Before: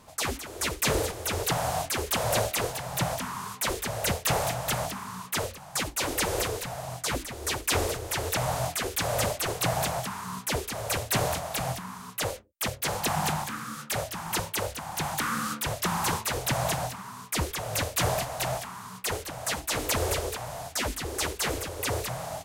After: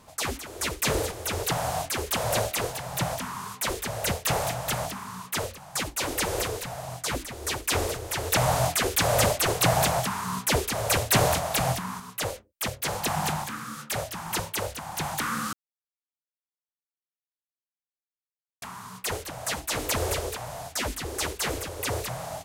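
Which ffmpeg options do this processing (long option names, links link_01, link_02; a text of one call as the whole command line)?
ffmpeg -i in.wav -filter_complex "[0:a]asettb=1/sr,asplit=3[link_01][link_02][link_03];[link_01]atrim=end=8.324[link_04];[link_02]atrim=start=8.32:end=12,asetpts=PTS-STARTPTS,afade=type=in:duration=0.004:curve=qsin,afade=type=out:start_time=3.676:duration=0.004:curve=qsin,acontrast=32[link_05];[link_03]atrim=start=11.996[link_06];[link_04][link_05]acrossfade=duration=0.004:curve1=hsin:curve2=qsin[link_07];[link_07][link_06]acrossfade=duration=0.004:curve1=qsin:curve2=hsin,asplit=3[link_08][link_09][link_10];[link_08]atrim=end=15.53,asetpts=PTS-STARTPTS,afade=type=out:start_time=15.526:duration=0.004:curve=hsin[link_11];[link_09]atrim=start=15.53:end=18.62,asetpts=PTS-STARTPTS,volume=0[link_12];[link_10]atrim=start=18.62,asetpts=PTS-STARTPTS,afade=type=in:duration=0.004:curve=hsin[link_13];[link_11][link_12][link_13]concat=n=3:v=0:a=1" out.wav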